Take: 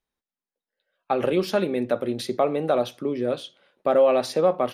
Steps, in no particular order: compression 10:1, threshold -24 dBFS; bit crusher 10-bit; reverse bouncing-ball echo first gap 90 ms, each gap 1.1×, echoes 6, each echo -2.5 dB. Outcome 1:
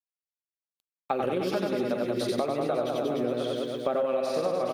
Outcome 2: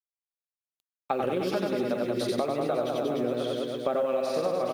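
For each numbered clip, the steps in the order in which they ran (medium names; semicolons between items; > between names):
reverse bouncing-ball echo > bit crusher > compression; reverse bouncing-ball echo > compression > bit crusher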